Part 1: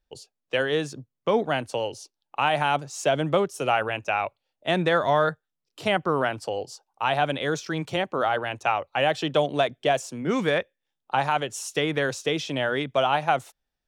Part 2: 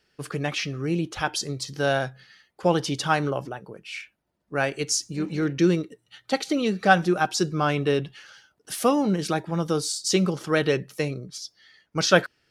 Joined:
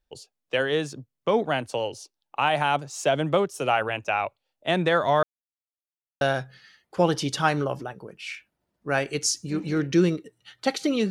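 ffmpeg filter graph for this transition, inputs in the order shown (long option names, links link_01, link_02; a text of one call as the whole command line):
ffmpeg -i cue0.wav -i cue1.wav -filter_complex "[0:a]apad=whole_dur=11.1,atrim=end=11.1,asplit=2[link_01][link_02];[link_01]atrim=end=5.23,asetpts=PTS-STARTPTS,afade=type=out:start_time=5.226:duration=0.004:curve=hsin[link_03];[link_02]atrim=start=5.23:end=6.21,asetpts=PTS-STARTPTS,volume=0[link_04];[1:a]atrim=start=1.87:end=6.76,asetpts=PTS-STARTPTS,afade=type=in:duration=0.004:curve=hsin[link_05];[link_03][link_04][link_05]concat=n=3:v=0:a=1" out.wav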